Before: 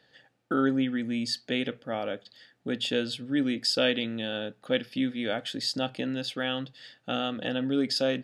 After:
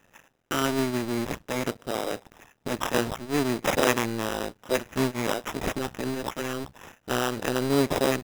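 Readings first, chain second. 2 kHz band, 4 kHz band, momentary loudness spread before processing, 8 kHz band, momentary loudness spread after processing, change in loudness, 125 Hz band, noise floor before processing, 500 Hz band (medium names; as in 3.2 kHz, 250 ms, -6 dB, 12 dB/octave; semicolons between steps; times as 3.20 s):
+3.0 dB, -4.0 dB, 9 LU, +8.5 dB, 10 LU, +1.5 dB, +6.0 dB, -68 dBFS, +3.5 dB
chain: cycle switcher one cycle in 2, muted; sample-rate reducer 4.4 kHz, jitter 0%; trim +5 dB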